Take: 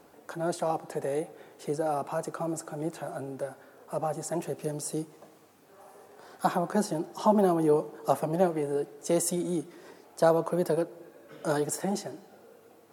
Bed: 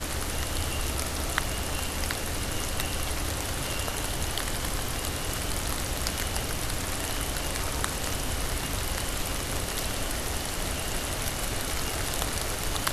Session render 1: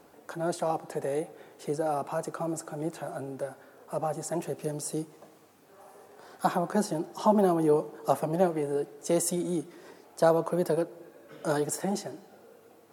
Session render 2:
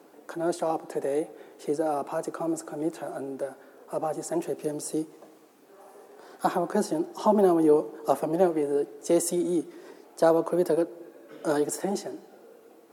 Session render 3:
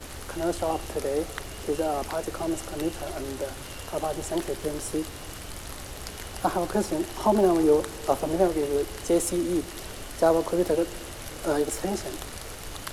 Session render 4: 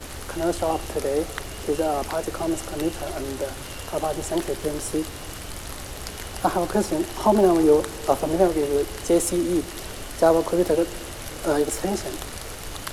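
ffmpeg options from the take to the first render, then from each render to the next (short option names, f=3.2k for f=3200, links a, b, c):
-af anull
-af "highpass=210,equalizer=f=330:t=o:w=1.1:g=6"
-filter_complex "[1:a]volume=-8.5dB[a];[0:a][a]amix=inputs=2:normalize=0"
-af "volume=3.5dB"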